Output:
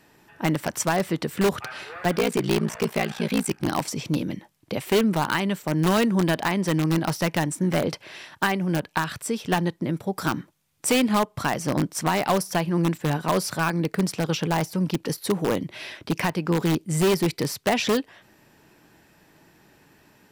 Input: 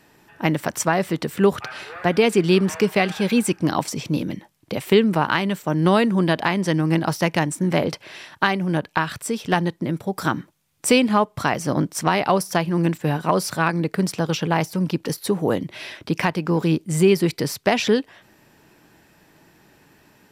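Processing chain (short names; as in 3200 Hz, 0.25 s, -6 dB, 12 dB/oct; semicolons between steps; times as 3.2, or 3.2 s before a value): 2.16–3.68 ring modulator 29 Hz; in parallel at -6 dB: wrapped overs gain 11.5 dB; on the sum: gain -5.5 dB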